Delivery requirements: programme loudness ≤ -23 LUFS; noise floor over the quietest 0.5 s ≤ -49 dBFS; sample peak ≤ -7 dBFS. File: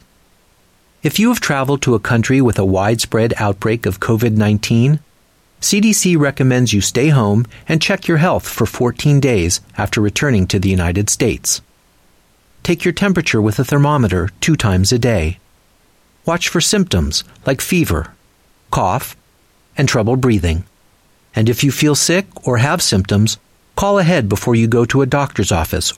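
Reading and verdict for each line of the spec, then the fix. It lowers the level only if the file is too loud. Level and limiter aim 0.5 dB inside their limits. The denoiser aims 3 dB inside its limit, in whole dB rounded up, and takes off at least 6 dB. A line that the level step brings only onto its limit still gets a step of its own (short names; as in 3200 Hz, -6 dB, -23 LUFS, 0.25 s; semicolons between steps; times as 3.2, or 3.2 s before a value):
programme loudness -15.0 LUFS: fail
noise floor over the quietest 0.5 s -54 dBFS: OK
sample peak -4.0 dBFS: fail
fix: gain -8.5 dB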